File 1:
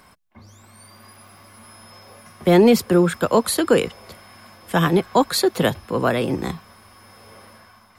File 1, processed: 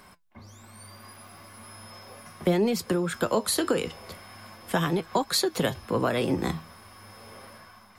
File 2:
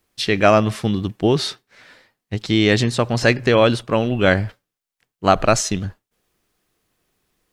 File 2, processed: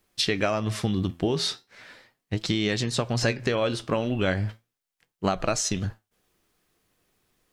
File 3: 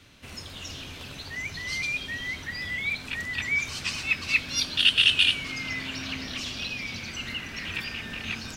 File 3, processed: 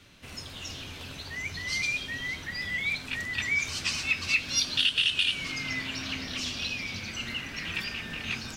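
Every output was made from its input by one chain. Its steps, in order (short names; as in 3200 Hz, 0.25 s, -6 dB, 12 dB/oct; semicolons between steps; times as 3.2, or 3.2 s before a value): dynamic EQ 6000 Hz, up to +4 dB, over -38 dBFS, Q 0.88; compressor 12:1, threshold -20 dBFS; flange 0.38 Hz, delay 4.8 ms, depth 7.9 ms, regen +75%; gain +3.5 dB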